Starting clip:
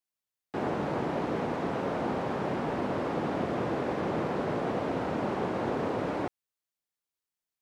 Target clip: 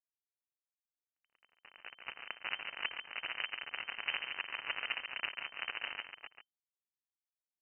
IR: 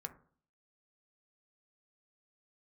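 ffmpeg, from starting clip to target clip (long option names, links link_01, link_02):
-filter_complex "[0:a]highpass=170,agate=range=-33dB:threshold=-28dB:ratio=3:detection=peak,aecho=1:1:7.1:0.74,alimiter=limit=-23.5dB:level=0:latency=1:release=344,dynaudnorm=framelen=290:gausssize=11:maxgain=8dB,asettb=1/sr,asplit=3[link_01][link_02][link_03];[link_01]atrim=end=2.124[link_04];[link_02]atrim=start=2.12:end=4.14,asetpts=PTS-STARTPTS,afade=type=in:duration=0.004:curve=qsin,afade=type=out:start_time=2.016:duration=0.004:curve=qsin,aeval=exprs='0.168*(cos(1*acos(clip(val(0)/0.168,-1,1)))-cos(1*PI/2))+0.00841*(cos(2*acos(clip(val(0)/0.168,-1,1)))-cos(2*PI/2))':channel_layout=same[link_05];[link_03]atrim=start=4.136[link_06];[link_04][link_05]acrossfade=duration=0.004:curve1=hsin:curve2=qsin[link_07];[link_07][link_06]acrossfade=duration=0.004:curve1=qsin:curve2=hsin,acrusher=bits=2:mix=0:aa=0.5,tremolo=f=13:d=0.52,asplit=2[link_08][link_09];[link_09]adelay=139.9,volume=-7dB,highshelf=frequency=4000:gain=-3.15[link_10];[link_08][link_10]amix=inputs=2:normalize=0,lowpass=frequency=2600:width_type=q:width=0.5098,lowpass=frequency=2600:width_type=q:width=0.6013,lowpass=frequency=2600:width_type=q:width=0.9,lowpass=frequency=2600:width_type=q:width=2.563,afreqshift=-3100,volume=-2.5dB"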